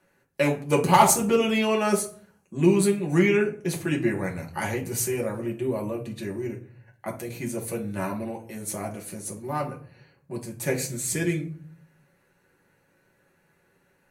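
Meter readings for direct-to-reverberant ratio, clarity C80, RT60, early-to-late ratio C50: -1.5 dB, 17.0 dB, 0.45 s, 11.5 dB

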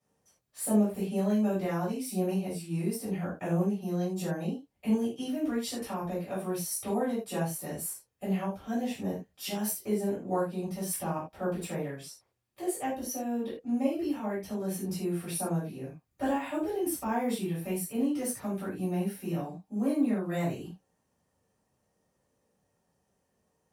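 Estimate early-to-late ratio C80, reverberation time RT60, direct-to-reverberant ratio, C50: 11.0 dB, not exponential, -11.0 dB, 4.5 dB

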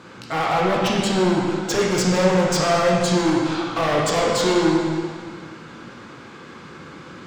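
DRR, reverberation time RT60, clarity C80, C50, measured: -3.0 dB, 1.9 s, 1.5 dB, -0.5 dB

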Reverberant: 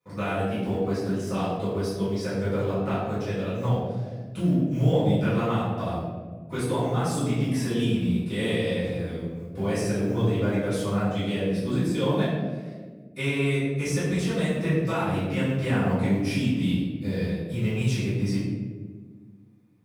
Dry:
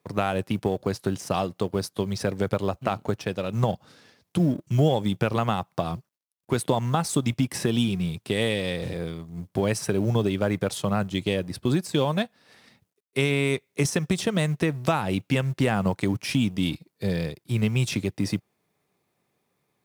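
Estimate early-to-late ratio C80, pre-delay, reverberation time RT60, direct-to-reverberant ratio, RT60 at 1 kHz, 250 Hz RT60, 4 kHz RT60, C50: 2.0 dB, 4 ms, 1.6 s, -13.5 dB, 1.2 s, 2.3 s, 0.75 s, -0.5 dB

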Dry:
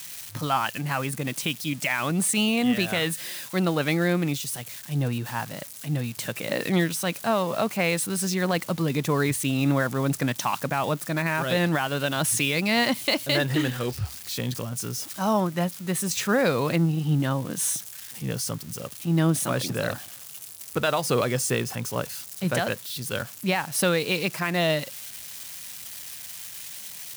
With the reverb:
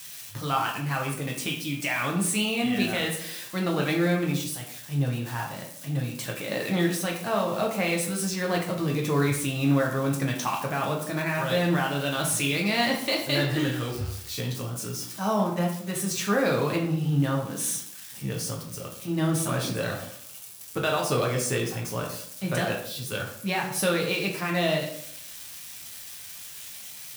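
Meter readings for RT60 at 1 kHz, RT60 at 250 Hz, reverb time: 0.60 s, 0.70 s, 0.65 s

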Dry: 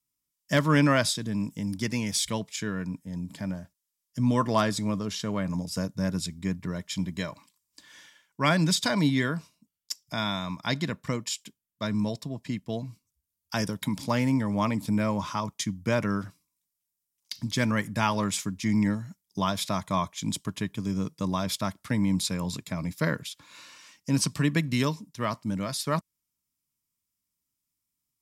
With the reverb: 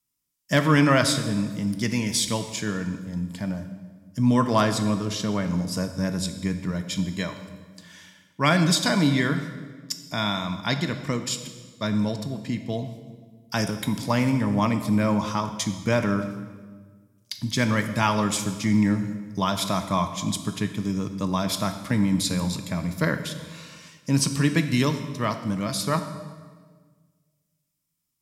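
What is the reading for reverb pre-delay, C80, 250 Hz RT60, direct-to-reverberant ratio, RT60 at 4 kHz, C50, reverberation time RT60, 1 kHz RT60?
7 ms, 11.0 dB, 1.9 s, 7.5 dB, 1.2 s, 9.5 dB, 1.5 s, 1.4 s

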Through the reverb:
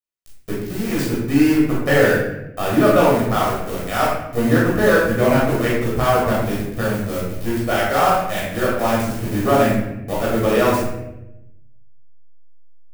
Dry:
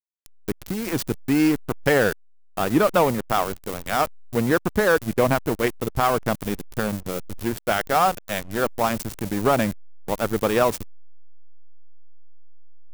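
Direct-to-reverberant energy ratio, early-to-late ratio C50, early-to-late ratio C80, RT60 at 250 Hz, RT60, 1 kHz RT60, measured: -7.0 dB, 0.0 dB, 3.5 dB, 1.3 s, 0.90 s, 0.75 s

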